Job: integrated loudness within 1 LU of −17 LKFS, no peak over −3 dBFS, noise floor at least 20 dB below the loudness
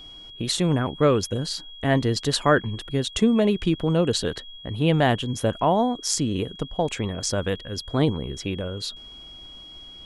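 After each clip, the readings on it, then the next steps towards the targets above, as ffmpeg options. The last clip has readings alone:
interfering tone 3,300 Hz; level of the tone −41 dBFS; integrated loudness −24.0 LKFS; sample peak −6.0 dBFS; target loudness −17.0 LKFS
→ -af "bandreject=frequency=3300:width=30"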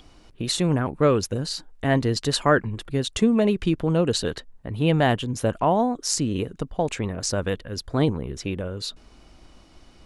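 interfering tone none found; integrated loudness −24.0 LKFS; sample peak −6.0 dBFS; target loudness −17.0 LKFS
→ -af "volume=7dB,alimiter=limit=-3dB:level=0:latency=1"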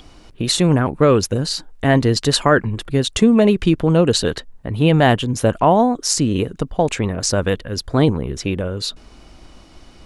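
integrated loudness −17.5 LKFS; sample peak −3.0 dBFS; background noise floor −46 dBFS

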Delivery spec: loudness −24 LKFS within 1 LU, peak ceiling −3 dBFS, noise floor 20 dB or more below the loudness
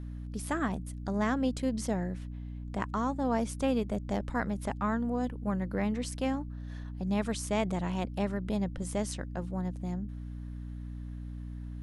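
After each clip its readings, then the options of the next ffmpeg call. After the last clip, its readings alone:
mains hum 60 Hz; hum harmonics up to 300 Hz; level of the hum −37 dBFS; integrated loudness −33.5 LKFS; sample peak −15.0 dBFS; target loudness −24.0 LKFS
→ -af "bandreject=frequency=60:width_type=h:width=6,bandreject=frequency=120:width_type=h:width=6,bandreject=frequency=180:width_type=h:width=6,bandreject=frequency=240:width_type=h:width=6,bandreject=frequency=300:width_type=h:width=6"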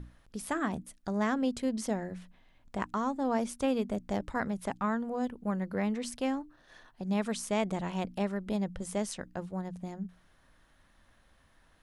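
mains hum none found; integrated loudness −34.0 LKFS; sample peak −15.0 dBFS; target loudness −24.0 LKFS
→ -af "volume=10dB"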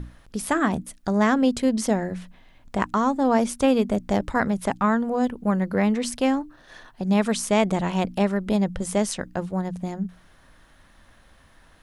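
integrated loudness −24.0 LKFS; sample peak −5.0 dBFS; background noise floor −55 dBFS

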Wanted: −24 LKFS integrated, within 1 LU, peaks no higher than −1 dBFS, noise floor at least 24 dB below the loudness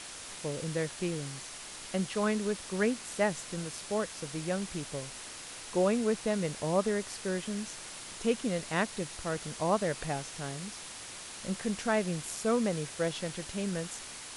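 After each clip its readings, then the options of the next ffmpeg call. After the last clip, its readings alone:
background noise floor −45 dBFS; target noise floor −58 dBFS; integrated loudness −33.5 LKFS; sample peak −15.0 dBFS; target loudness −24.0 LKFS
→ -af "afftdn=noise_reduction=13:noise_floor=-45"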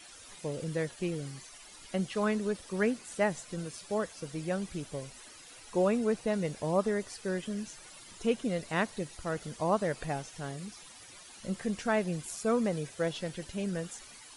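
background noise floor −52 dBFS; target noise floor −58 dBFS
→ -af "afftdn=noise_reduction=6:noise_floor=-52"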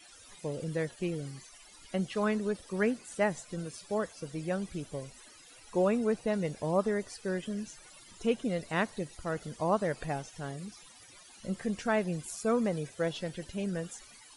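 background noise floor −55 dBFS; target noise floor −58 dBFS
→ -af "afftdn=noise_reduction=6:noise_floor=-55"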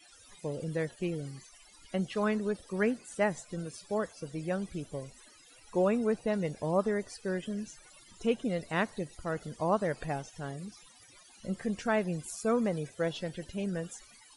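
background noise floor −58 dBFS; integrated loudness −33.5 LKFS; sample peak −15.0 dBFS; target loudness −24.0 LKFS
→ -af "volume=9.5dB"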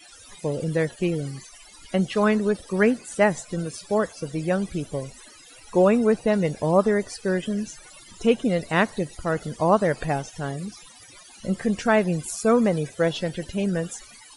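integrated loudness −24.0 LKFS; sample peak −5.5 dBFS; background noise floor −48 dBFS

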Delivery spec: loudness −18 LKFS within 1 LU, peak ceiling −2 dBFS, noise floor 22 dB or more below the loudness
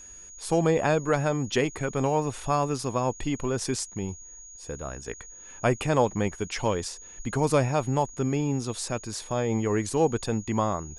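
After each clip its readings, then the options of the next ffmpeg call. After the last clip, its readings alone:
interfering tone 6,700 Hz; level of the tone −44 dBFS; integrated loudness −27.5 LKFS; sample peak −9.5 dBFS; target loudness −18.0 LKFS
→ -af "bandreject=frequency=6700:width=30"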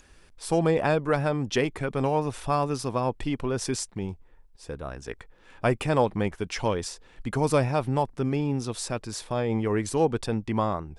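interfering tone none found; integrated loudness −27.5 LKFS; sample peak −10.0 dBFS; target loudness −18.0 LKFS
→ -af "volume=9.5dB,alimiter=limit=-2dB:level=0:latency=1"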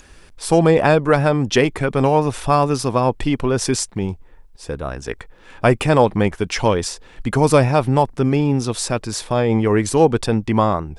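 integrated loudness −18.0 LKFS; sample peak −2.0 dBFS; background noise floor −45 dBFS

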